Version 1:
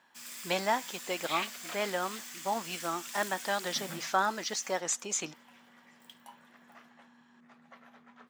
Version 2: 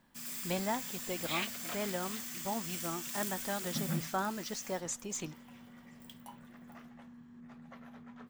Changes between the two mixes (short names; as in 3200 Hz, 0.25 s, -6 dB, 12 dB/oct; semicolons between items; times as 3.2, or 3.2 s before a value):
speech -7.5 dB; master: remove weighting filter A